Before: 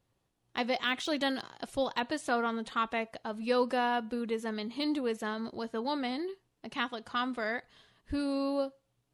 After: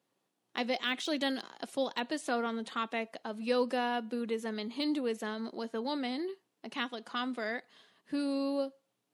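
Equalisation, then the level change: HPF 190 Hz 24 dB/oct; dynamic EQ 1100 Hz, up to -5 dB, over -42 dBFS, Q 0.99; 0.0 dB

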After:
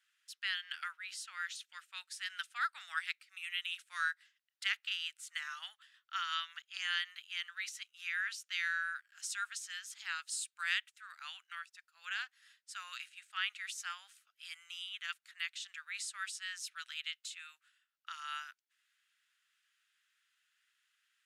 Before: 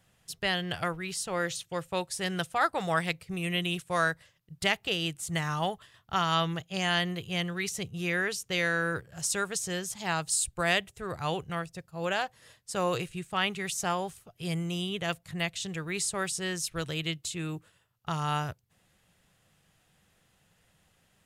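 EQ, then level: Chebyshev high-pass 1400 Hz, order 4; high shelf 7200 Hz -11.5 dB; -4.5 dB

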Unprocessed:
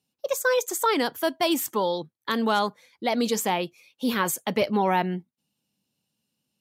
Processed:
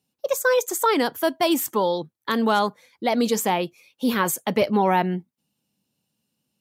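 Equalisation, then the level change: bell 3800 Hz -3 dB 2.3 oct; +3.5 dB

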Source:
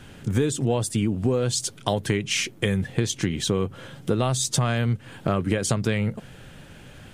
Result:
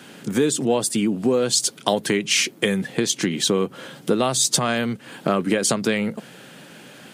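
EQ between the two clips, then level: HPF 180 Hz 24 dB/oct; bell 4500 Hz +3 dB 0.39 oct; high shelf 9400 Hz +5 dB; +4.5 dB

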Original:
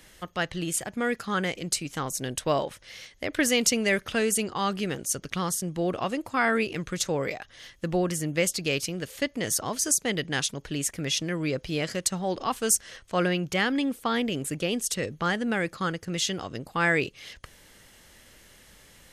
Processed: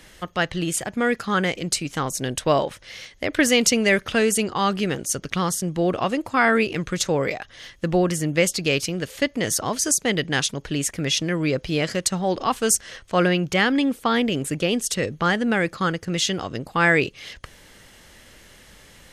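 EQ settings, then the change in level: high shelf 8900 Hz -7 dB; +6.0 dB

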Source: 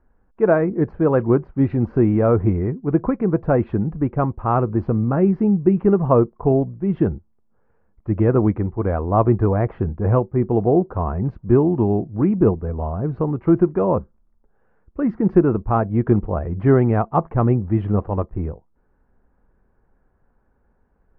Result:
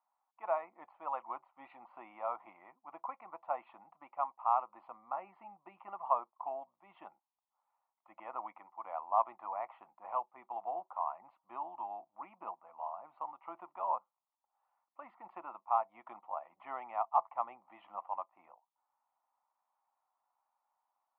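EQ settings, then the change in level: ladder high-pass 700 Hz, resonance 40%; fixed phaser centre 1600 Hz, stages 6; -3.0 dB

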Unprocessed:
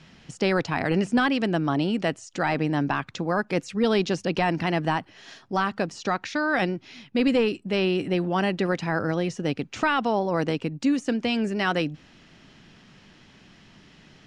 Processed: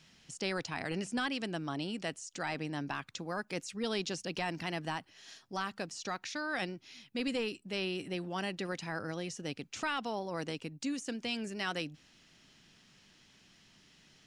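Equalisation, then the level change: pre-emphasis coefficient 0.8; 0.0 dB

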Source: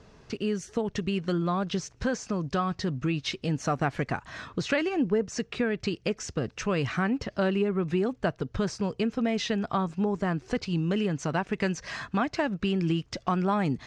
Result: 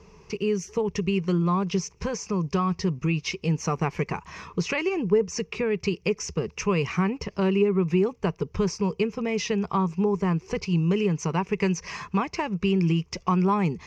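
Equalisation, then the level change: ripple EQ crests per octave 0.79, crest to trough 12 dB; 0.0 dB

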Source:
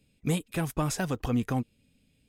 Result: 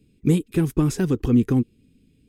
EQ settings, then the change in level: resonant low shelf 490 Hz +8 dB, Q 3; 0.0 dB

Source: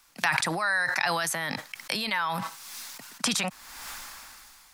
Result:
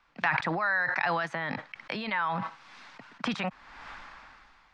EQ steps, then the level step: LPF 2400 Hz 12 dB/oct; air absorption 66 m; 0.0 dB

